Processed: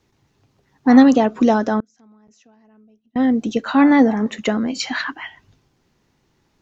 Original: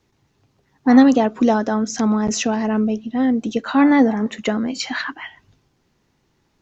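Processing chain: 1.80–3.16 s: inverted gate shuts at -29 dBFS, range -34 dB; trim +1 dB

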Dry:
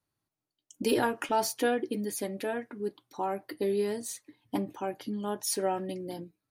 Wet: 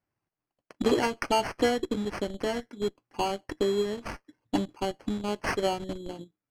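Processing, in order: in parallel at -7 dB: Schmitt trigger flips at -32 dBFS; on the sum: transient shaper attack +4 dB, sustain -7 dB; sample-and-hold 12×; distance through air 53 m

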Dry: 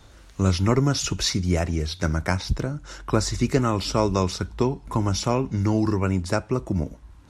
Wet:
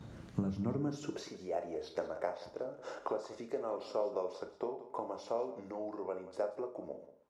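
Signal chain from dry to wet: Doppler pass-by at 1.89 s, 10 m/s, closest 4.1 m; compression 16:1, threshold -42 dBFS, peak gain reduction 24.5 dB; high-pass sweep 150 Hz -> 490 Hz, 0.62–1.33 s; upward compressor, threshold -47 dBFS; dynamic bell 690 Hz, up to +8 dB, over -59 dBFS, Q 0.93; gate -58 dBFS, range -12 dB; tilt EQ -3 dB/octave; hum notches 50/100/150 Hz; on a send: delay 182 ms -15 dB; on the sum: Schroeder reverb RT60 0.32 s, combs from 27 ms, DRR 7 dB; trim +1 dB

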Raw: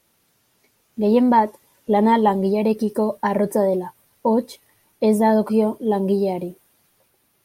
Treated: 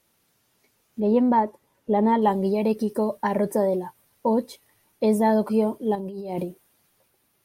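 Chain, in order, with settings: 1.00–2.22 s: treble shelf 2.3 kHz -10.5 dB; 5.95–6.45 s: compressor with a negative ratio -28 dBFS, ratio -1; trim -3.5 dB

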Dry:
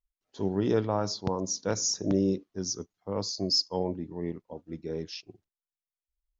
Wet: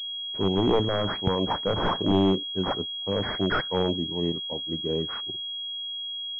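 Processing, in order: one-sided wavefolder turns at -22.5 dBFS; class-D stage that switches slowly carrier 3.3 kHz; trim +6 dB

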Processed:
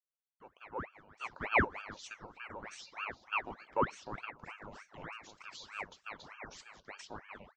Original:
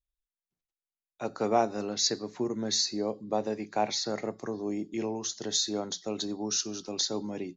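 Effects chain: vowel filter a; reverse echo 796 ms -13 dB; ring modulator with a swept carrier 1.1 kHz, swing 85%, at 3.3 Hz; trim +3.5 dB

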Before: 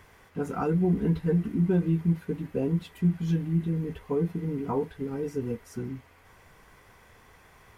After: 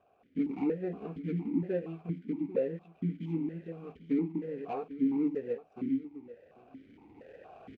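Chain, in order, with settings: median filter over 41 samples; recorder AGC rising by 8.1 dB/s; delay 795 ms -14.5 dB; stepped vowel filter 4.3 Hz; trim +7.5 dB

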